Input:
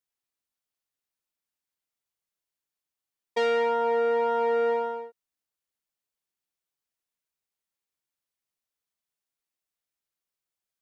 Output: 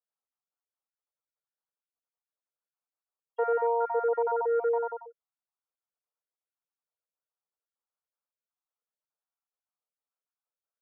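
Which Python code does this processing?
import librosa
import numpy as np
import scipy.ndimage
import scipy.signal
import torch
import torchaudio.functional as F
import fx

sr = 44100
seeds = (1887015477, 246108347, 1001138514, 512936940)

y = fx.spec_dropout(x, sr, seeds[0], share_pct=37)
y = scipy.signal.sosfilt(scipy.signal.cheby1(3, 1.0, [460.0, 1400.0], 'bandpass', fs=sr, output='sos'), y)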